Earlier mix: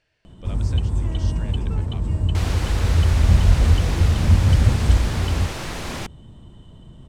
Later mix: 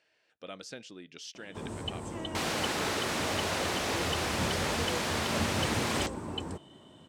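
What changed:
first sound: entry +1.10 s; master: add HPF 320 Hz 12 dB/oct

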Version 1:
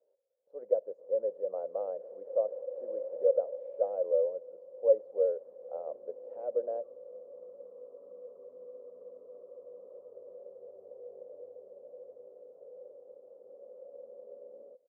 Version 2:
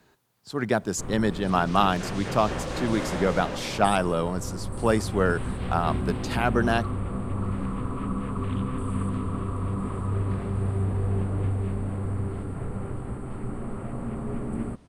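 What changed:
speech -5.0 dB; master: remove Butterworth band-pass 530 Hz, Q 6.3

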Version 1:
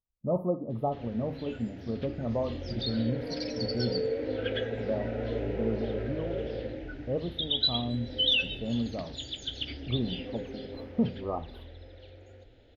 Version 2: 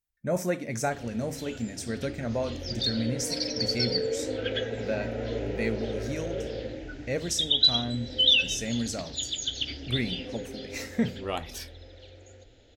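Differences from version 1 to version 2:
speech: remove brick-wall FIR band-stop 1300–9700 Hz; master: remove air absorption 220 m

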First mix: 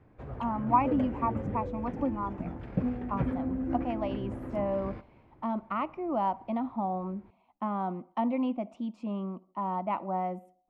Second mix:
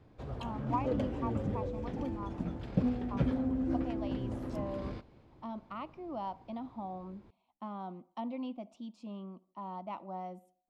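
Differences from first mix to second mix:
speech -9.5 dB; master: add resonant high shelf 2900 Hz +9.5 dB, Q 1.5

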